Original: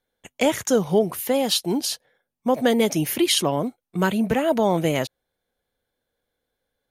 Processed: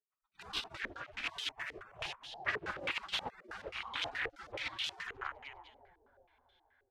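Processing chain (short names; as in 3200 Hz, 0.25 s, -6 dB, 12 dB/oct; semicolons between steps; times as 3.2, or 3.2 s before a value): 1.93–3.3 minimum comb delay 6.8 ms; on a send: split-band echo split 500 Hz, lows 0.326 s, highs 0.101 s, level -10 dB; on the sum: limiter -12 dBFS, peak gain reduction 6 dB; wavefolder -24 dBFS; spectral gate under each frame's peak -25 dB weak; stepped low-pass 9.4 Hz 440–3300 Hz; gain +5.5 dB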